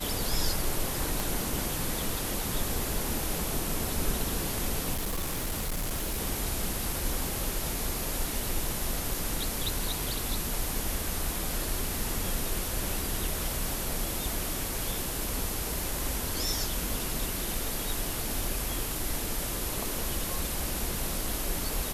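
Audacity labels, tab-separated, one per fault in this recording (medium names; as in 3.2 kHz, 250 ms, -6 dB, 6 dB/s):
1.200000	1.200000	pop
4.930000	6.190000	clipped -27.5 dBFS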